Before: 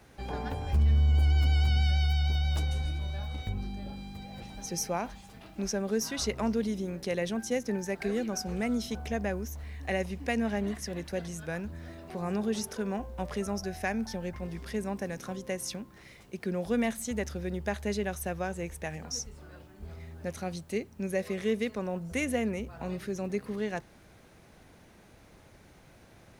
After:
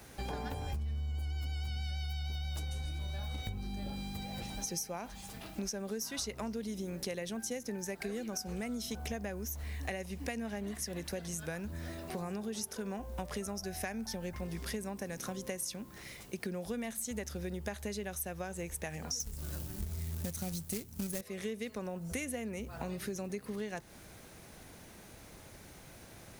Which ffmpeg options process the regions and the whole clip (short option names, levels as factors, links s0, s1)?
-filter_complex "[0:a]asettb=1/sr,asplit=3[s0][s1][s2];[s0]atrim=end=19.204[s3];[s1]atrim=start=19.2:end=21.21,asetpts=PTS-STARTPTS,afade=t=in:d=0.004:c=qsin,afade=t=out:st=2.006:d=0.004:c=qsin,acrusher=bits=2:mode=log:mix=0:aa=0.000001,bass=f=250:g=12,treble=f=4000:g=7[s4];[s2]atrim=start=21.206[s5];[s3][s4]acrossfade=d=0.004:c1=hsin:c2=qsin[s6];[s6][s5]acrossfade=d=0.004:c1=qsin:c2=hsin,highshelf=f=5700:g=11.5,acompressor=threshold=0.0141:ratio=10,volume=1.26"